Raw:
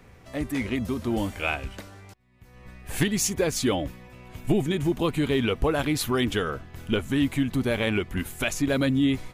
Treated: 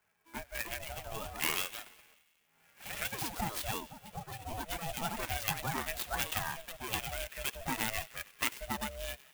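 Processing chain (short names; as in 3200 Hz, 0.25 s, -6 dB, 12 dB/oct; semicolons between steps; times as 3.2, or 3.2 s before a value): per-bin expansion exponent 1.5; compressor 2.5:1, threshold -34 dBFS, peak gain reduction 10 dB; on a send: thin delay 95 ms, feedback 72%, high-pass 2300 Hz, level -17 dB; on the sum: echoes that change speed 0.363 s, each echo +3 st, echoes 2, each echo -6 dB; in parallel at -10.5 dB: crossover distortion -46 dBFS; on the sum: speaker cabinet 470–5600 Hz, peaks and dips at 490 Hz +3 dB, 1100 Hz +5 dB, 2000 Hz +6 dB, 3000 Hz +9 dB, 5200 Hz +5 dB; ring modulator 330 Hz; clock jitter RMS 0.053 ms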